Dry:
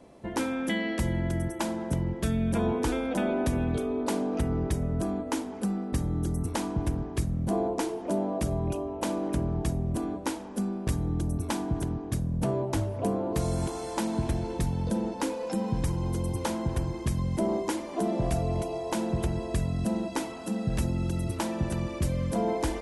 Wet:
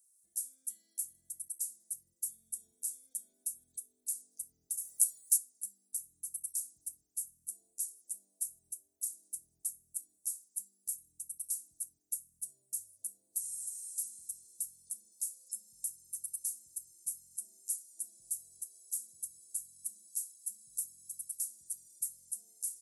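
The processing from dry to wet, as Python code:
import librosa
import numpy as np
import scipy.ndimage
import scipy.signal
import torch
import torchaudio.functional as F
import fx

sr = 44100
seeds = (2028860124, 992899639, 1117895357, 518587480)

y = fx.spec_clip(x, sr, under_db=28, at=(4.77, 5.36), fade=0.02)
y = scipy.signal.sosfilt(scipy.signal.cheby2(4, 60, 2900.0, 'highpass', fs=sr, output='sos'), y)
y = y * librosa.db_to_amplitude(10.0)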